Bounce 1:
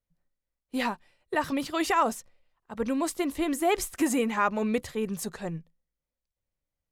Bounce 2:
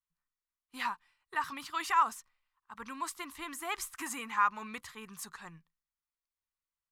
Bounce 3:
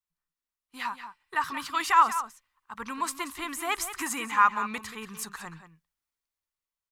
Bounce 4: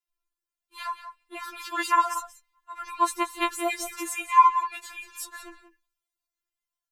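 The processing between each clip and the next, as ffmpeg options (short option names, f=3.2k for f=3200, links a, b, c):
-af "lowshelf=f=780:t=q:w=3:g=-11,volume=-6.5dB"
-filter_complex "[0:a]asplit=2[a][b];[b]adelay=180.8,volume=-11dB,highshelf=f=4k:g=-4.07[c];[a][c]amix=inputs=2:normalize=0,dynaudnorm=f=210:g=11:m=8dB,volume=-1dB"
-af "afftfilt=real='re*4*eq(mod(b,16),0)':imag='im*4*eq(mod(b,16),0)':win_size=2048:overlap=0.75,volume=2.5dB"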